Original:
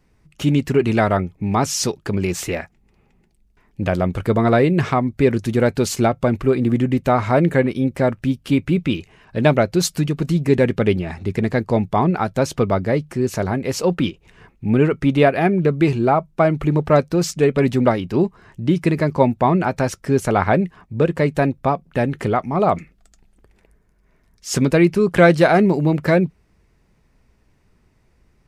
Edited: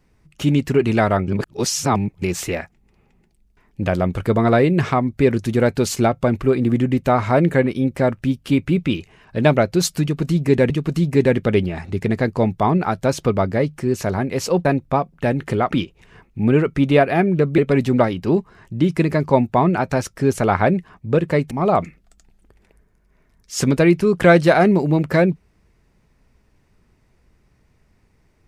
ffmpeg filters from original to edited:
-filter_complex "[0:a]asplit=8[a][b][c][d][e][f][g][h];[a]atrim=end=1.282[i];[b]atrim=start=1.278:end=2.222,asetpts=PTS-STARTPTS,areverse[j];[c]atrim=start=2.218:end=10.702[k];[d]atrim=start=10.028:end=13.982[l];[e]atrim=start=21.378:end=22.452[m];[f]atrim=start=13.978:end=15.842[n];[g]atrim=start=17.448:end=21.382[o];[h]atrim=start=22.448[p];[i][j]acrossfade=d=0.004:c1=hsin:c2=hsin[q];[q][k]acrossfade=d=0.004:c1=hsin:c2=hsin[r];[r][l]acrossfade=d=0.004:c1=hsin:c2=hsin[s];[s][m]acrossfade=d=0.004:c1=hsin:c2=hsin[t];[t][n]acrossfade=d=0.004:c1=hsin:c2=hsin[u];[u][o]acrossfade=d=0.004:c1=hsin:c2=hsin[v];[v][p]acrossfade=d=0.004:c1=hsin:c2=hsin"

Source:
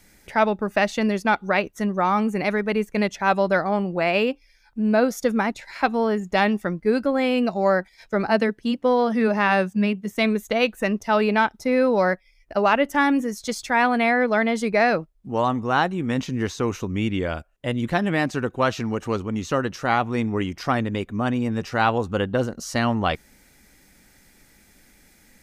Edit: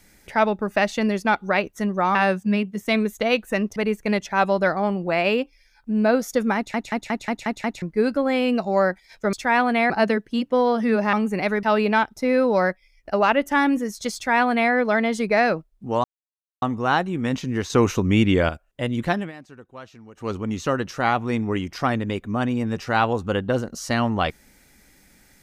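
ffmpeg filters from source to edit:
-filter_complex "[0:a]asplit=19[a][b][c][d][e][f][g][h][i][j][k][l][m][n][o][p][q][r][s];[a]atrim=end=2.152[t];[b]atrim=start=9.448:end=11.062[u];[c]atrim=start=2.648:end=5.632[v];[d]atrim=start=5.448:end=5.632[w];[e]atrim=start=5.448:end=5.632[x];[f]atrim=start=5.448:end=5.632[y];[g]atrim=start=5.448:end=5.632[z];[h]atrim=start=5.448:end=5.632[aa];[i]atrim=start=5.448:end=5.632[ab];[j]atrim=start=6.708:end=8.222[ac];[k]atrim=start=13.578:end=14.152[ad];[l]atrim=start=8.218:end=9.452[ae];[m]atrim=start=2.148:end=2.652[af];[n]atrim=start=11.058:end=15.47,asetpts=PTS-STARTPTS,afade=t=out:st=4.408:d=0.004:c=hsin,apad=pad_dur=0.58[ag];[o]atrim=start=15.47:end=16.552,asetpts=PTS-STARTPTS,afade=t=in:d=0.004:c=hsin[ah];[p]atrim=start=16.548:end=17.342,asetpts=PTS-STARTPTS,volume=6.5dB[ai];[q]atrim=start=17.338:end=18.17,asetpts=PTS-STARTPTS,afade=t=out:st=0.632:d=0.2:silence=0.112202[aj];[r]atrim=start=18.17:end=19,asetpts=PTS-STARTPTS,volume=-19dB[ak];[s]atrim=start=19,asetpts=PTS-STARTPTS,afade=t=in:d=0.2:silence=0.112202[al];[t][u]acrossfade=d=0.004:c1=hsin:c2=hsin[am];[am][v]acrossfade=d=0.004:c1=hsin:c2=hsin[an];[an][w]acrossfade=d=0.004:c1=hsin:c2=hsin[ao];[ao][x]acrossfade=d=0.004:c1=hsin:c2=hsin[ap];[ap][y]acrossfade=d=0.004:c1=hsin:c2=hsin[aq];[aq][z]acrossfade=d=0.004:c1=hsin:c2=hsin[ar];[ar][aa]acrossfade=d=0.004:c1=hsin:c2=hsin[as];[as][ab]acrossfade=d=0.004:c1=hsin:c2=hsin[at];[at][ac]acrossfade=d=0.004:c1=hsin:c2=hsin[au];[au][ad]acrossfade=d=0.004:c1=hsin:c2=hsin[av];[av][ae]acrossfade=d=0.004:c1=hsin:c2=hsin[aw];[aw][af]acrossfade=d=0.004:c1=hsin:c2=hsin[ax];[ag][ah]concat=n=2:v=0:a=1[ay];[ax][ay]acrossfade=d=0.004:c1=hsin:c2=hsin[az];[az][ai]acrossfade=d=0.004:c1=hsin:c2=hsin[ba];[aj][ak][al]concat=n=3:v=0:a=1[bb];[ba][bb]acrossfade=d=0.004:c1=hsin:c2=hsin"

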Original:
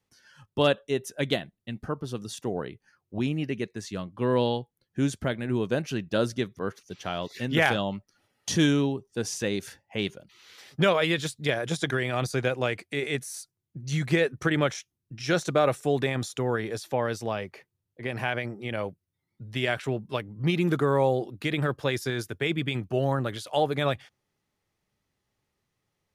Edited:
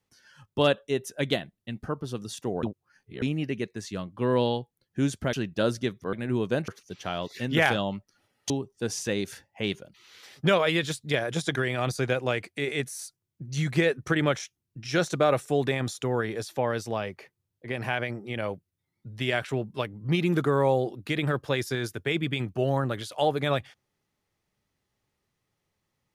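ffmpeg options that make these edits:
-filter_complex "[0:a]asplit=7[a][b][c][d][e][f][g];[a]atrim=end=2.632[h];[b]atrim=start=2.628:end=3.222,asetpts=PTS-STARTPTS,areverse[i];[c]atrim=start=3.218:end=5.332[j];[d]atrim=start=5.878:end=6.682[k];[e]atrim=start=5.328:end=5.882[l];[f]atrim=start=6.678:end=8.502[m];[g]atrim=start=8.848[n];[h][i]acrossfade=d=0.004:c1=hsin:c2=hsin[o];[o][j]acrossfade=d=0.004:c1=hsin:c2=hsin[p];[p][k]acrossfade=d=0.004:c1=hsin:c2=hsin[q];[q][l]acrossfade=d=0.004:c1=hsin:c2=hsin[r];[r][m]acrossfade=d=0.004:c1=hsin:c2=hsin[s];[s][n]acrossfade=d=0.004:c1=hsin:c2=hsin"

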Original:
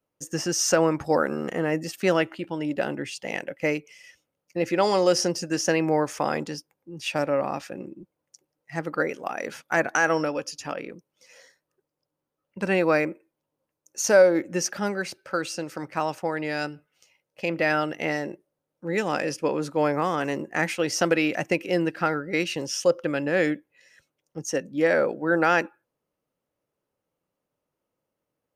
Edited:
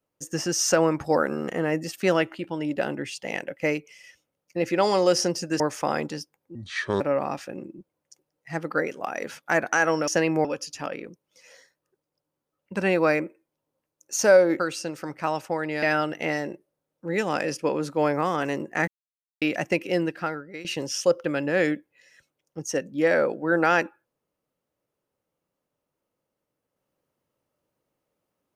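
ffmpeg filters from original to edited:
-filter_complex "[0:a]asplit=11[a][b][c][d][e][f][g][h][i][j][k];[a]atrim=end=5.602[l];[b]atrim=start=5.968:end=6.924[m];[c]atrim=start=6.92:end=7.23,asetpts=PTS-STARTPTS,asetrate=29988,aresample=44100,atrim=end_sample=20104,asetpts=PTS-STARTPTS[n];[d]atrim=start=7.226:end=10.302[o];[e]atrim=start=5.598:end=5.972[p];[f]atrim=start=10.298:end=14.452[q];[g]atrim=start=15.328:end=16.562[r];[h]atrim=start=17.618:end=20.67,asetpts=PTS-STARTPTS,afade=t=out:st=3.048:d=0.004:c=hsin[s];[i]atrim=start=20.67:end=21.21,asetpts=PTS-STARTPTS,volume=0[t];[j]atrim=start=21.21:end=22.44,asetpts=PTS-STARTPTS,afade=t=in:d=0.004:c=hsin,afade=t=out:st=0.5:d=0.73:silence=0.133352[u];[k]atrim=start=22.44,asetpts=PTS-STARTPTS,afade=t=in:d=0.004:c=hsin:silence=0.133352[v];[l][m]acrossfade=d=0.004:c1=hsin:c2=hsin[w];[w][n]acrossfade=d=0.004:c1=hsin:c2=hsin[x];[x][o]acrossfade=d=0.004:c1=hsin:c2=hsin[y];[y][p]acrossfade=d=0.004:c1=hsin:c2=hsin[z];[z][q]acrossfade=d=0.004:c1=hsin:c2=hsin[aa];[aa][r]acrossfade=d=0.004:c1=hsin:c2=hsin[ab];[s][t][u][v]concat=n=4:v=0:a=1[ac];[ab][ac]acrossfade=d=0.004:c1=hsin:c2=hsin"

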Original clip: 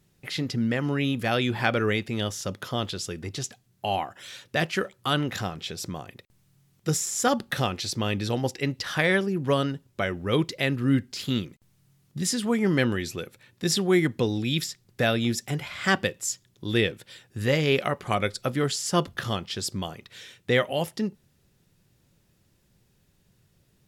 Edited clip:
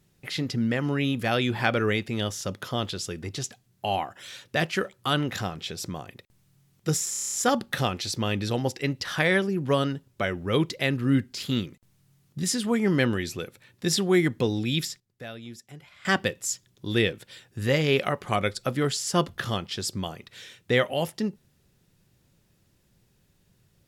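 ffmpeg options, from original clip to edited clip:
-filter_complex "[0:a]asplit=10[a][b][c][d][e][f][g][h][i][j];[a]atrim=end=7.142[k];[b]atrim=start=7.108:end=7.142[l];[c]atrim=start=7.108:end=7.142[m];[d]atrim=start=7.108:end=7.142[n];[e]atrim=start=7.108:end=7.142[o];[f]atrim=start=7.108:end=7.142[p];[g]atrim=start=7.108:end=7.142[q];[h]atrim=start=7.108:end=14.79,asetpts=PTS-STARTPTS,afade=t=out:st=7.362:d=0.32:c=log:silence=0.158489[r];[i]atrim=start=14.79:end=15.84,asetpts=PTS-STARTPTS,volume=-16dB[s];[j]atrim=start=15.84,asetpts=PTS-STARTPTS,afade=t=in:d=0.32:c=log:silence=0.158489[t];[k][l]acrossfade=d=0.004:c1=hsin:c2=hsin[u];[u][m]acrossfade=d=0.004:c1=hsin:c2=hsin[v];[v][n]acrossfade=d=0.004:c1=hsin:c2=hsin[w];[w][o]acrossfade=d=0.004:c1=hsin:c2=hsin[x];[x][p]acrossfade=d=0.004:c1=hsin:c2=hsin[y];[y][q]acrossfade=d=0.004:c1=hsin:c2=hsin[z];[r][s][t]concat=n=3:v=0:a=1[aa];[z][aa]acrossfade=d=0.004:c1=hsin:c2=hsin"

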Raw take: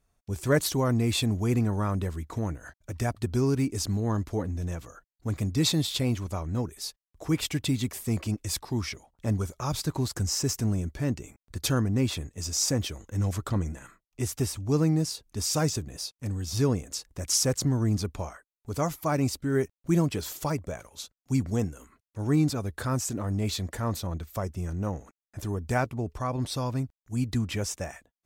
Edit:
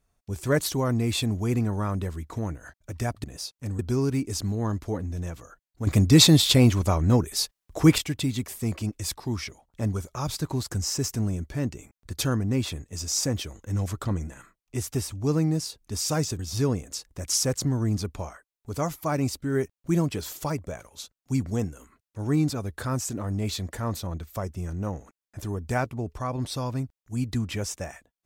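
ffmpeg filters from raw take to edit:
-filter_complex "[0:a]asplit=6[a][b][c][d][e][f];[a]atrim=end=3.242[g];[b]atrim=start=15.838:end=16.392[h];[c]atrim=start=3.238:end=5.322[i];[d]atrim=start=5.318:end=7.432,asetpts=PTS-STARTPTS,volume=9.5dB[j];[e]atrim=start=7.428:end=15.842[k];[f]atrim=start=16.388[l];[g][h]acrossfade=d=0.004:c1=hsin:c2=hsin[m];[m][i]acrossfade=d=0.004:c1=hsin:c2=hsin[n];[n][j]acrossfade=d=0.004:c1=hsin:c2=hsin[o];[o][k]acrossfade=d=0.004:c1=hsin:c2=hsin[p];[p][l]acrossfade=d=0.004:c1=hsin:c2=hsin"

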